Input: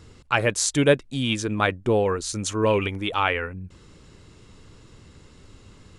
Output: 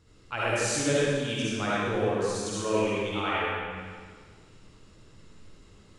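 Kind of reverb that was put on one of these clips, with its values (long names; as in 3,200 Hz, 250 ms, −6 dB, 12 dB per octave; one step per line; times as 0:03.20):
comb and all-pass reverb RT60 1.7 s, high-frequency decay 0.95×, pre-delay 25 ms, DRR −8.5 dB
level −13.5 dB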